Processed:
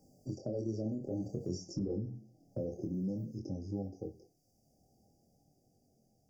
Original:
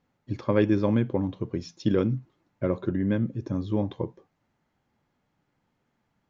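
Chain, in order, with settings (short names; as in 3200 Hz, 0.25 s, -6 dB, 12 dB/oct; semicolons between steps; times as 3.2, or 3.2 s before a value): Doppler pass-by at 1.76, 17 m/s, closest 2 m; high shelf 3600 Hz +9 dB; Schroeder reverb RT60 0.31 s, combs from 25 ms, DRR 13.5 dB; in parallel at -2 dB: compressor, threshold -56 dBFS, peak gain reduction 33 dB; on the sum: FFT band-reject 810–4600 Hz; limiter -35.5 dBFS, peak gain reduction 22.5 dB; chorus 0.53 Hz, delay 20 ms, depth 7.7 ms; three-band squash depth 70%; gain +10.5 dB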